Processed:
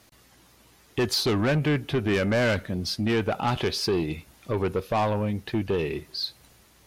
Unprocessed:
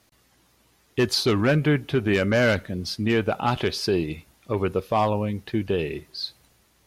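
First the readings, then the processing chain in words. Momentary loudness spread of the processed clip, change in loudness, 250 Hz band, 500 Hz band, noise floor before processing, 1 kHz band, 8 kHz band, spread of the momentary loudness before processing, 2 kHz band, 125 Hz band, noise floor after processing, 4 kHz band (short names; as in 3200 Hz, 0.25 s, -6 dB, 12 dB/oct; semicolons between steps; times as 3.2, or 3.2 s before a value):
8 LU, -2.0 dB, -2.0 dB, -2.5 dB, -63 dBFS, -2.5 dB, 0.0 dB, 11 LU, -3.0 dB, -1.5 dB, -58 dBFS, -0.5 dB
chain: in parallel at -2 dB: compressor, threshold -39 dBFS, peak gain reduction 20.5 dB; on the sum: soft clip -18.5 dBFS, distortion -13 dB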